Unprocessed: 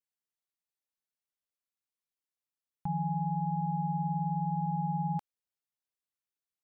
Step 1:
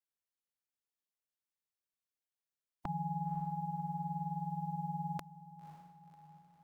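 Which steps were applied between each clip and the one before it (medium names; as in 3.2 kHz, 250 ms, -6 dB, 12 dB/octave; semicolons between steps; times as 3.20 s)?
spectral peaks clipped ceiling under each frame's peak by 24 dB; echo that smears into a reverb 544 ms, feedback 52%, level -12.5 dB; trim -4.5 dB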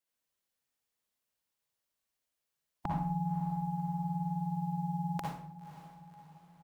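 doubling 44 ms -11 dB; reverberation RT60 0.55 s, pre-delay 51 ms, DRR -1.5 dB; trim +3.5 dB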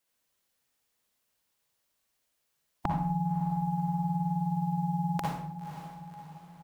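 compression, threshold -35 dBFS, peak gain reduction 6.5 dB; trim +8.5 dB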